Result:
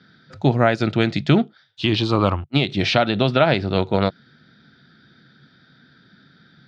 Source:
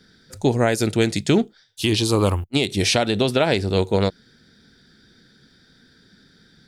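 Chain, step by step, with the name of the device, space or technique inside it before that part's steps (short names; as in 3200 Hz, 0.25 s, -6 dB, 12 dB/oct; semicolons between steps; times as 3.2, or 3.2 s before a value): guitar cabinet (speaker cabinet 100–4100 Hz, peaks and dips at 140 Hz +7 dB, 440 Hz -6 dB, 660 Hz +4 dB, 1300 Hz +7 dB); gain +1 dB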